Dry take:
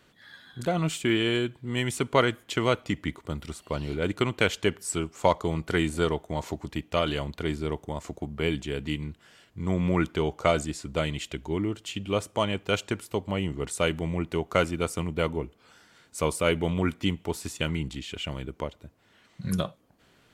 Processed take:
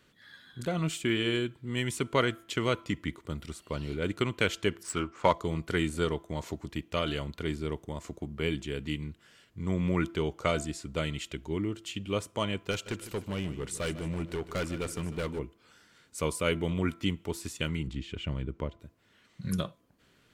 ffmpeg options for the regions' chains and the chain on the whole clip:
-filter_complex "[0:a]asettb=1/sr,asplit=3[a][b][c];[a]atrim=end=4.834[d];[b]atrim=start=4.83:end=5.32,asetpts=PTS-STARTPTS,afade=t=in:d=0.004:c=qsin,afade=t=out:st=0.486:d=0.004:c=qsin,adynamicsmooth=sensitivity=7:basefreq=3.9k,equalizer=f=1.3k:t=o:w=1.5:g=8,asplit=2[e][f];[f]adelay=16,volume=-12dB[g];[e][g]amix=inputs=2:normalize=0,atrim=end_sample=21609[h];[c]atrim=start=5.316[i];[d][h]acrossfade=d=0.004:c1=hsin:c2=qsin[j];[j][i]acrossfade=d=0.004:c1=qsin:c2=hsin,asettb=1/sr,asplit=3[k][l][m];[k]atrim=end=12.714[n];[l]atrim=start=12.71:end=15.39,asetpts=PTS-STARTPTS,afade=t=in:d=0.004:c=qsin,afade=t=out:st=2.676:d=0.004:c=qsin,acompressor=mode=upward:threshold=-34dB:ratio=2.5:attack=3.2:release=140:knee=2.83:detection=peak,asoftclip=type=hard:threshold=-24dB,aecho=1:1:151|302|453|604|755:0.2|0.0978|0.0479|0.0235|0.0115,atrim=end_sample=118188[o];[m]atrim=start=15.386[p];[n][o]acrossfade=d=0.004:c1=hsin:c2=qsin[q];[q][p]acrossfade=d=0.004:c1=qsin:c2=hsin,asettb=1/sr,asplit=3[r][s][t];[r]atrim=end=17.874[u];[s]atrim=start=17.87:end=18.8,asetpts=PTS-STARTPTS,afade=t=in:d=0.004:c=qsin,afade=t=out:st=0.926:d=0.004:c=qsin,lowpass=f=2.7k:p=1,lowshelf=f=220:g=7.5[v];[t]atrim=start=18.796[w];[u][v]acrossfade=d=0.004:c1=hsin:c2=qsin[x];[x][w]acrossfade=d=0.004:c1=qsin:c2=hsin,equalizer=f=760:w=2.1:g=-6,bandreject=f=336.1:t=h:w=4,bandreject=f=672.2:t=h:w=4,bandreject=f=1.0083k:t=h:w=4,bandreject=f=1.3444k:t=h:w=4,volume=-3dB"

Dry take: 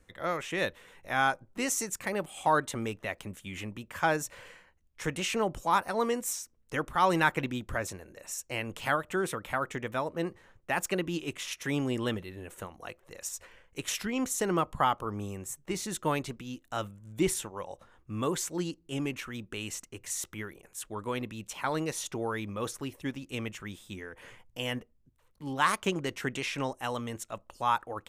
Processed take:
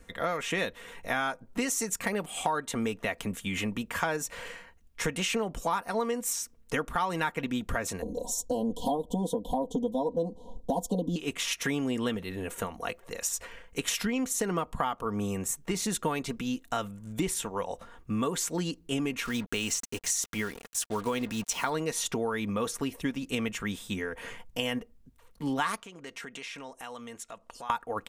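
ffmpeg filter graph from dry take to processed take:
-filter_complex "[0:a]asettb=1/sr,asplit=3[a][b][c];[a]atrim=end=8.024[d];[b]atrim=start=8.02:end=11.16,asetpts=PTS-STARTPTS,afade=t=in:d=0.004:c=qsin,afade=t=out:st=3.136:d=0.004:c=qsin,asuperstop=centerf=1800:order=20:qfactor=0.83,tiltshelf=f=1.5k:g=6,aecho=1:1:4:0.96,atrim=end_sample=138474[e];[c]atrim=start=11.156[f];[d][e]acrossfade=d=0.004:c1=hsin:c2=qsin[g];[g][f]acrossfade=d=0.004:c1=qsin:c2=hsin,asettb=1/sr,asplit=3[h][i][j];[h]atrim=end=19.254[k];[i]atrim=start=19.25:end=21.7,asetpts=PTS-STARTPTS,afade=t=in:d=0.004:c=qsin,afade=t=out:st=2.446:d=0.004:c=qsin,equalizer=f=5.8k:w=1.6:g=7,acrusher=bits=7:mix=0:aa=0.5[l];[j]atrim=start=21.696[m];[k][l]acrossfade=d=0.004:c1=hsin:c2=qsin[n];[n][m]acrossfade=d=0.004:c1=qsin:c2=hsin,asettb=1/sr,asplit=3[o][p][q];[o]atrim=end=25.804[r];[p]atrim=start=25.8:end=27.7,asetpts=PTS-STARTPTS,afade=t=in:d=0.004:c=qsin,afade=t=out:st=1.896:d=0.004:c=qsin,lowpass=11k,acompressor=threshold=-48dB:ratio=4:attack=3.2:release=140:knee=1:detection=peak,lowshelf=f=290:g=-9.5[s];[q]atrim=start=27.696[t];[r][s]acrossfade=d=0.004:c1=hsin:c2=qsin[u];[u][t]acrossfade=d=0.004:c1=qsin:c2=hsin,aecho=1:1:4.3:0.44,acompressor=threshold=-35dB:ratio=6,volume=8dB"

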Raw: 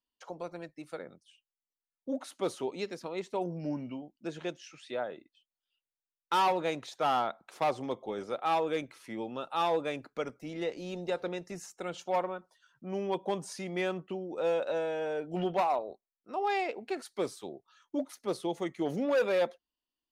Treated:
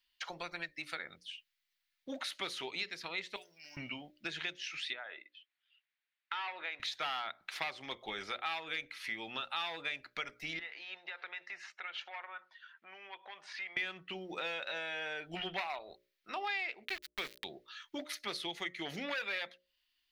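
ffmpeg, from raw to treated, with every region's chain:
-filter_complex "[0:a]asettb=1/sr,asplit=3[a][b][c];[a]atrim=end=3.364[d];[b]atrim=start=3.36:end=3.77,asetpts=PTS-STARTPTS,afade=t=in:d=0.004:c=qsin,afade=t=out:st=0.406:d=0.004:c=qsin,aderivative,acrusher=bits=7:mode=log:mix=0:aa=0.000001[e];[c]atrim=start=3.766[f];[d][e]acrossfade=d=0.004:c1=hsin:c2=qsin[g];[g][f]acrossfade=d=0.004:c1=qsin:c2=hsin,asettb=1/sr,asplit=3[h][i][j];[h]atrim=end=4.934[k];[i]atrim=start=4.93:end=6.8,asetpts=PTS-STARTPTS,afade=t=in:d=0.004:c=qsin,afade=t=out:st=1.866:d=0.004:c=qsin,highpass=470,lowpass=2.5k,acompressor=threshold=-54dB:ratio=1.5:attack=3.2:release=140:knee=1:detection=peak[l];[j]atrim=start=6.796[m];[k][l]acrossfade=d=0.004:c1=hsin:c2=qsin[n];[n][m]acrossfade=d=0.004:c1=qsin:c2=hsin,asettb=1/sr,asplit=3[o][p][q];[o]atrim=end=10.594[r];[p]atrim=start=10.59:end=13.77,asetpts=PTS-STARTPTS,afade=t=in:d=0.004:c=qsin,afade=t=out:st=3.176:d=0.004:c=qsin,acompressor=threshold=-42dB:ratio=5:attack=3.2:release=140:knee=1:detection=peak,highpass=750,lowpass=2.2k[s];[q]atrim=start=13.766[t];[r][s]acrossfade=d=0.004:c1=hsin:c2=qsin[u];[u][t]acrossfade=d=0.004:c1=qsin:c2=hsin,asettb=1/sr,asplit=3[v][w][x];[v]atrim=end=16.854[y];[w]atrim=start=16.85:end=17.44,asetpts=PTS-STARTPTS,afade=t=in:d=0.004:c=qsin,afade=t=out:st=0.586:d=0.004:c=qsin,lowshelf=f=410:g=-2,aeval=exprs='val(0)*gte(abs(val(0)),0.0106)':c=same[z];[x]atrim=start=17.436[aa];[y][z]acrossfade=d=0.004:c1=hsin:c2=qsin[ab];[ab][aa]acrossfade=d=0.004:c1=qsin:c2=hsin,equalizer=f=125:t=o:w=1:g=-9,equalizer=f=250:t=o:w=1:g=-11,equalizer=f=500:t=o:w=1:g=-12,equalizer=f=1k:t=o:w=1:g=-5,equalizer=f=2k:t=o:w=1:g=10,equalizer=f=4k:t=o:w=1:g=8,equalizer=f=8k:t=o:w=1:g=-7,acompressor=threshold=-46dB:ratio=4,bandreject=f=60:t=h:w=6,bandreject=f=120:t=h:w=6,bandreject=f=180:t=h:w=6,bandreject=f=240:t=h:w=6,bandreject=f=300:t=h:w=6,bandreject=f=360:t=h:w=6,bandreject=f=420:t=h:w=6,bandreject=f=480:t=h:w=6,bandreject=f=540:t=h:w=6,bandreject=f=600:t=h:w=6,volume=8.5dB"

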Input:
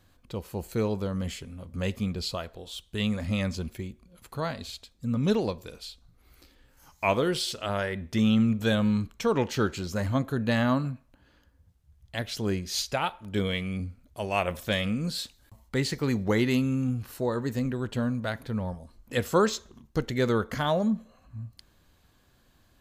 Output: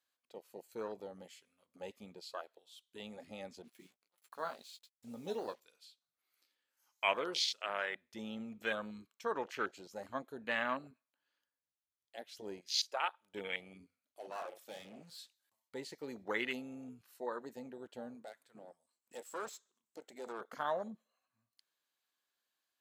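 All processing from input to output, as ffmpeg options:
-filter_complex "[0:a]asettb=1/sr,asplit=3[a][b][c];[a]atrim=end=3.624[d];[b]atrim=start=3.62:end=5.6,asetpts=PTS-STARTPTS,afade=t=in:d=0.004:c=qsin,afade=t=out:st=1.976:d=0.004:c=qsin,acrusher=bits=7:mix=0:aa=0.5,asplit=2[e][f];[f]adelay=17,volume=-10dB[g];[e][g]amix=inputs=2:normalize=0,atrim=end_sample=87318,adynamicequalizer=threshold=0.00355:dfrequency=2600:dqfactor=0.7:tfrequency=2600:tqfactor=0.7:attack=5:release=100:ratio=0.375:range=2:mode=boostabove:tftype=highshelf[h];[c]atrim=start=5.596[i];[d][h]acrossfade=d=0.004:c1=hsin:c2=qsin[j];[j][i]acrossfade=d=0.004:c1=qsin:c2=hsin,asettb=1/sr,asplit=3[k][l][m];[k]atrim=end=13.854[n];[l]atrim=start=13.85:end=15.18,asetpts=PTS-STARTPTS,afade=t=in:d=0.004:c=qsin,afade=t=out:st=1.326:d=0.004:c=qsin,asplit=2[o][p];[p]adelay=42,volume=-8dB[q];[o][q]amix=inputs=2:normalize=0,atrim=end_sample=58653,asoftclip=type=hard:threshold=-30dB[r];[m]atrim=start=15.176[s];[n][r]acrossfade=d=0.004:c1=hsin:c2=qsin[t];[t][s]acrossfade=d=0.004:c1=qsin:c2=hsin,asettb=1/sr,asplit=3[u][v][w];[u]atrim=end=18.224[x];[v]atrim=start=18.22:end=20.41,asetpts=PTS-STARTPTS,afade=t=in:d=0.004:c=qsin,afade=t=out:st=2.186:d=0.004:c=qsin,equalizer=f=7.9k:t=o:w=0.3:g=14,acompressor=mode=upward:threshold=-45dB:ratio=2.5:attack=3.2:release=140:knee=2.83:detection=peak,aeval=exprs='(tanh(22.4*val(0)+0.7)-tanh(0.7))/22.4':c=same[y];[w]atrim=start=20.406[z];[x][y]acrossfade=d=0.004:c1=hsin:c2=qsin[aa];[aa][z]acrossfade=d=0.004:c1=qsin:c2=hsin,highpass=350,afwtdn=0.0224,tiltshelf=f=840:g=-7,volume=-7.5dB"

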